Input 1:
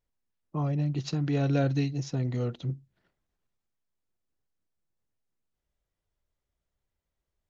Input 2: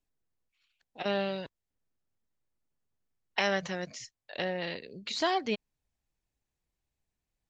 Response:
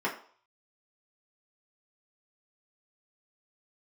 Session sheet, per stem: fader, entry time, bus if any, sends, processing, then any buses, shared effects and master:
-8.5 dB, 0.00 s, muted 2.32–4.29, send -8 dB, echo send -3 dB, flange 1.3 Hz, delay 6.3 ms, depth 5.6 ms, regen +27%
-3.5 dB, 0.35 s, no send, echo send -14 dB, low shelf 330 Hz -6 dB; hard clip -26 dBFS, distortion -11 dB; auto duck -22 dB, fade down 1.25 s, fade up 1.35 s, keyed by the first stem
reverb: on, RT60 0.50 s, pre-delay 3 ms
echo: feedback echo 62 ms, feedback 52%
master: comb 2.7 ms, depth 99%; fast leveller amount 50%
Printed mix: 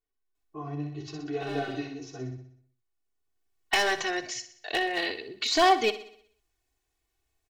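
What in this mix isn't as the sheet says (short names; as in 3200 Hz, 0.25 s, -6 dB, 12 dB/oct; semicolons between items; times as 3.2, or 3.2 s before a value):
stem 2 -3.5 dB -> +5.5 dB; master: missing fast leveller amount 50%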